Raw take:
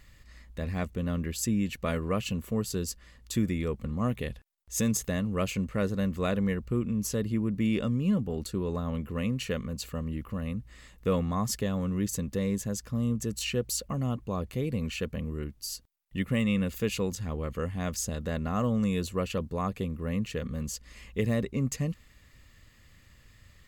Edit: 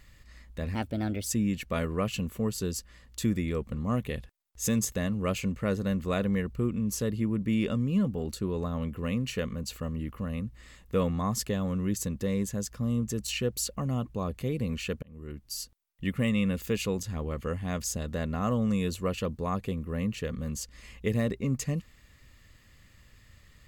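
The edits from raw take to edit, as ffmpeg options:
ffmpeg -i in.wav -filter_complex "[0:a]asplit=4[link_01][link_02][link_03][link_04];[link_01]atrim=end=0.754[link_05];[link_02]atrim=start=0.75:end=1.39,asetpts=PTS-STARTPTS,asetrate=54684,aresample=44100,atrim=end_sample=22761,asetpts=PTS-STARTPTS[link_06];[link_03]atrim=start=1.386:end=15.15,asetpts=PTS-STARTPTS,afade=type=out:start_time=13.76:duration=0.004:curve=hsin[link_07];[link_04]atrim=start=15.15,asetpts=PTS-STARTPTS,afade=type=in:duration=0.49[link_08];[link_05][link_06]acrossfade=duration=0.004:curve1=hsin:curve2=hsin[link_09];[link_07][link_08]concat=n=2:v=0:a=1[link_10];[link_09][link_10]acrossfade=duration=0.004:curve1=hsin:curve2=hsin" out.wav

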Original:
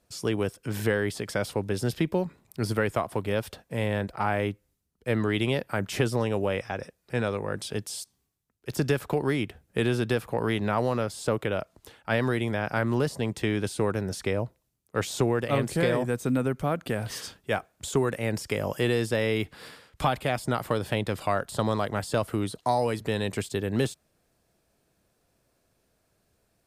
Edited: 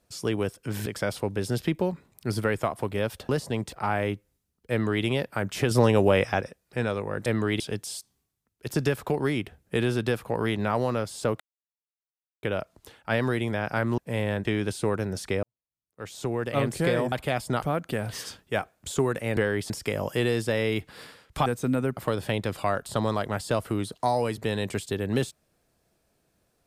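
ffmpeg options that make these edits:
ffmpeg -i in.wav -filter_complex "[0:a]asplit=18[link_01][link_02][link_03][link_04][link_05][link_06][link_07][link_08][link_09][link_10][link_11][link_12][link_13][link_14][link_15][link_16][link_17][link_18];[link_01]atrim=end=0.862[link_19];[link_02]atrim=start=1.188:end=3.622[link_20];[link_03]atrim=start=12.978:end=13.412[link_21];[link_04]atrim=start=4.088:end=6.082[link_22];[link_05]atrim=start=6.078:end=6.782,asetpts=PTS-STARTPTS,volume=7dB[link_23];[link_06]atrim=start=6.778:end=7.632[link_24];[link_07]atrim=start=5.078:end=5.422[link_25];[link_08]atrim=start=7.628:end=11.43,asetpts=PTS-STARTPTS,afade=type=out:start_time=3.798:duration=0.004:curve=hsin,apad=pad_dur=1.03[link_26];[link_09]atrim=start=11.43:end=12.982,asetpts=PTS-STARTPTS,afade=type=in:duration=0.004:curve=hsin[link_27];[link_10]atrim=start=3.618:end=4.092[link_28];[link_11]atrim=start=13.408:end=14.39,asetpts=PTS-STARTPTS,afade=type=out:start_time=0.978:duration=0.004:curve=hsin[link_29];[link_12]atrim=start=14.39:end=16.082,asetpts=PTS-STARTPTS,afade=type=in:duration=1.15:curve=qua[link_30];[link_13]atrim=start=20.098:end=20.602[link_31];[link_14]atrim=start=16.588:end=18.342[link_32];[link_15]atrim=start=0.858:end=1.192[link_33];[link_16]atrim=start=18.338:end=20.102[link_34];[link_17]atrim=start=16.078:end=16.592[link_35];[link_18]atrim=start=20.598[link_36];[link_19][link_20]acrossfade=duration=0.004:curve1=hsin:curve2=hsin[link_37];[link_37][link_21]acrossfade=duration=0.004:curve1=hsin:curve2=hsin[link_38];[link_38][link_22]acrossfade=duration=0.004:curve1=hsin:curve2=hsin[link_39];[link_39][link_23]acrossfade=duration=0.004:curve1=hsin:curve2=hsin[link_40];[link_40][link_24]acrossfade=duration=0.004:curve1=hsin:curve2=hsin[link_41];[link_41][link_25]acrossfade=duration=0.004:curve1=hsin:curve2=hsin[link_42];[link_26][link_27]concat=n=2:v=0:a=1[link_43];[link_42][link_43]acrossfade=duration=0.004:curve1=hsin:curve2=hsin[link_44];[link_44][link_28]acrossfade=duration=0.004:curve1=hsin:curve2=hsin[link_45];[link_29][link_30]concat=n=2:v=0:a=1[link_46];[link_45][link_46]acrossfade=duration=0.004:curve1=hsin:curve2=hsin[link_47];[link_47][link_31]acrossfade=duration=0.004:curve1=hsin:curve2=hsin[link_48];[link_48][link_32]acrossfade=duration=0.004:curve1=hsin:curve2=hsin[link_49];[link_49][link_33]acrossfade=duration=0.004:curve1=hsin:curve2=hsin[link_50];[link_50][link_34]acrossfade=duration=0.004:curve1=hsin:curve2=hsin[link_51];[link_51][link_35]acrossfade=duration=0.004:curve1=hsin:curve2=hsin[link_52];[link_52][link_36]acrossfade=duration=0.004:curve1=hsin:curve2=hsin" out.wav

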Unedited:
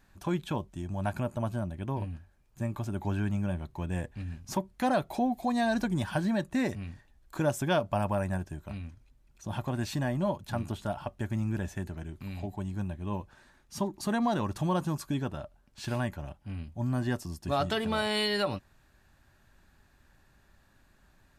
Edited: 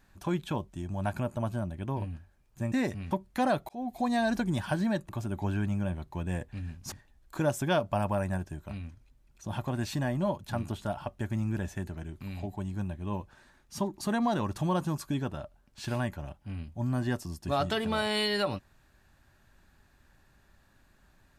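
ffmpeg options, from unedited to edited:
ffmpeg -i in.wav -filter_complex "[0:a]asplit=6[link_01][link_02][link_03][link_04][link_05][link_06];[link_01]atrim=end=2.722[link_07];[link_02]atrim=start=6.528:end=6.922[link_08];[link_03]atrim=start=4.548:end=5.13,asetpts=PTS-STARTPTS,afade=type=out:start_time=0.578:duration=0.004:curve=hsin[link_09];[link_04]atrim=start=5.13:end=6.532,asetpts=PTS-STARTPTS,afade=type=in:duration=0.31[link_10];[link_05]atrim=start=2.718:end=4.552[link_11];[link_06]atrim=start=6.918[link_12];[link_07][link_08]acrossfade=duration=0.004:curve1=hsin:curve2=hsin[link_13];[link_09][link_10]concat=n=2:v=0:a=1[link_14];[link_13][link_14]acrossfade=duration=0.004:curve1=hsin:curve2=hsin[link_15];[link_15][link_11]acrossfade=duration=0.004:curve1=hsin:curve2=hsin[link_16];[link_16][link_12]acrossfade=duration=0.004:curve1=hsin:curve2=hsin" out.wav

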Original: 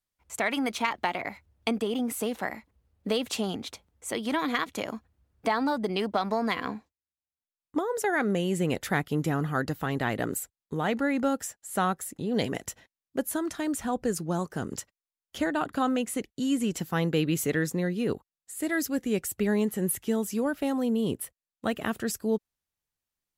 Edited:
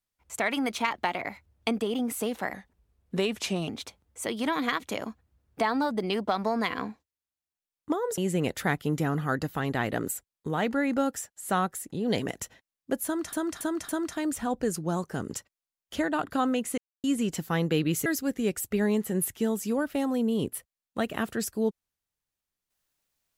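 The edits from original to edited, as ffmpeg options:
ffmpeg -i in.wav -filter_complex "[0:a]asplit=10[link_01][link_02][link_03][link_04][link_05][link_06][link_07][link_08][link_09][link_10];[link_01]atrim=end=2.534[link_11];[link_02]atrim=start=2.53:end=3.54,asetpts=PTS-STARTPTS,asetrate=38808,aresample=44100[link_12];[link_03]atrim=start=3.536:end=8.042[link_13];[link_04]atrim=start=8.438:end=13.592[link_14];[link_05]atrim=start=13.308:end=13.592[link_15];[link_06]atrim=start=13.308:end=13.592[link_16];[link_07]atrim=start=13.308:end=16.2,asetpts=PTS-STARTPTS,afade=type=out:start_time=2.888:duration=0.004:curve=hsin[link_17];[link_08]atrim=start=16.2:end=16.46,asetpts=PTS-STARTPTS,volume=0[link_18];[link_09]atrim=start=16.46:end=17.482,asetpts=PTS-STARTPTS,afade=type=in:duration=0.004:curve=hsin[link_19];[link_10]atrim=start=18.728[link_20];[link_11][link_12]acrossfade=duration=0.004:curve1=hsin:curve2=hsin[link_21];[link_21][link_13]acrossfade=duration=0.004:curve1=hsin:curve2=hsin[link_22];[link_22][link_14]acrossfade=duration=0.004:curve1=hsin:curve2=hsin[link_23];[link_23][link_15]acrossfade=duration=0.004:curve1=hsin:curve2=hsin[link_24];[link_24][link_16]acrossfade=duration=0.004:curve1=hsin:curve2=hsin[link_25];[link_17][link_18][link_19]concat=n=3:v=0:a=1[link_26];[link_25][link_26]acrossfade=duration=0.004:curve1=hsin:curve2=hsin[link_27];[link_27][link_20]acrossfade=duration=0.004:curve1=hsin:curve2=hsin" out.wav

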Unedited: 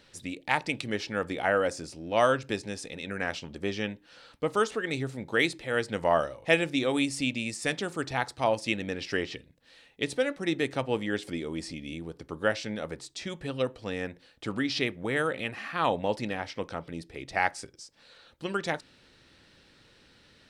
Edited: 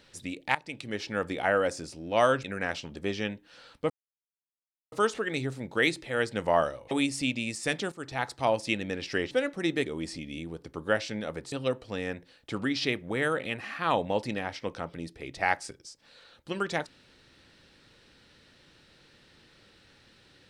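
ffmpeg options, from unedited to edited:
ffmpeg -i in.wav -filter_complex "[0:a]asplit=9[link_01][link_02][link_03][link_04][link_05][link_06][link_07][link_08][link_09];[link_01]atrim=end=0.55,asetpts=PTS-STARTPTS,afade=type=out:start_time=0.546:duration=0.004:curve=hsin:silence=0.149624[link_10];[link_02]atrim=start=0.55:end=2.442,asetpts=PTS-STARTPTS,afade=type=in:duration=0.59:silence=0.149624[link_11];[link_03]atrim=start=3.028:end=4.49,asetpts=PTS-STARTPTS,afade=type=out:start_time=1.458:duration=0.004:curve=hsin,apad=pad_dur=1.02[link_12];[link_04]atrim=start=4.49:end=6.482,asetpts=PTS-STARTPTS,afade=type=in:duration=0.004:curve=hsin[link_13];[link_05]atrim=start=6.898:end=7.91,asetpts=PTS-STARTPTS,afade=type=out:start_time=1.008:duration=0.004:curve=hsin:silence=0.237137[link_14];[link_06]atrim=start=7.91:end=9.302,asetpts=PTS-STARTPTS,afade=type=in:duration=0.38:silence=0.237137[link_15];[link_07]atrim=start=10.138:end=10.692[link_16];[link_08]atrim=start=11.408:end=13.072[link_17];[link_09]atrim=start=13.458[link_18];[link_10][link_11]concat=n=2:v=0:a=1[link_19];[link_12][link_13]concat=n=2:v=0:a=1[link_20];[link_19][link_20]acrossfade=duration=0.004:curve1=hsin:curve2=hsin[link_21];[link_14][link_15]concat=n=2:v=0:a=1[link_22];[link_21][link_22]acrossfade=duration=0.004:curve1=hsin:curve2=hsin[link_23];[link_23][link_16]acrossfade=duration=0.004:curve1=hsin:curve2=hsin[link_24];[link_24][link_17]acrossfade=duration=0.004:curve1=hsin:curve2=hsin[link_25];[link_25][link_18]acrossfade=duration=0.004:curve1=hsin:curve2=hsin" out.wav

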